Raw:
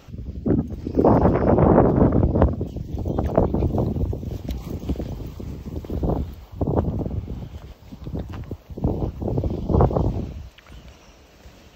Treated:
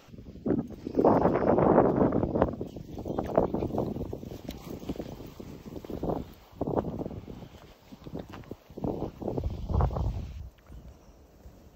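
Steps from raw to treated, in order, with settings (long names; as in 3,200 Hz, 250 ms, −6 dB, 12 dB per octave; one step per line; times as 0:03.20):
parametric band 69 Hz −13.5 dB 2.3 octaves, from 0:09.40 330 Hz, from 0:10.40 2,900 Hz
level −4 dB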